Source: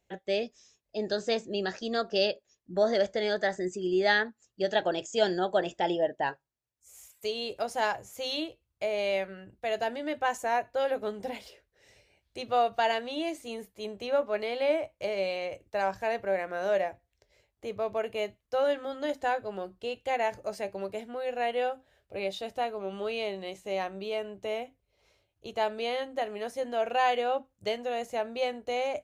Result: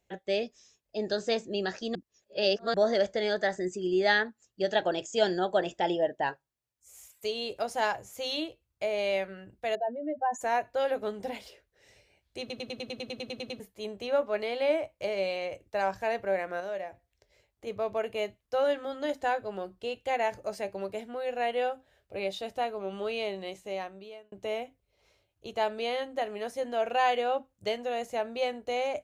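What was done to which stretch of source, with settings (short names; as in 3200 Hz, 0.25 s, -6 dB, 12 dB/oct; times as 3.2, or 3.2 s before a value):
1.95–2.74 reverse
9.75–10.41 spectral contrast raised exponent 2.4
12.4 stutter in place 0.10 s, 12 plays
16.6–17.67 compressor 1.5:1, threshold -47 dBFS
23.48–24.32 fade out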